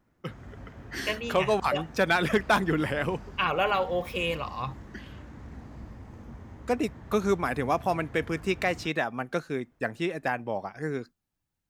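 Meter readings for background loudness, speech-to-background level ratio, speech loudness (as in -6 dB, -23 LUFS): -45.5 LUFS, 17.0 dB, -28.5 LUFS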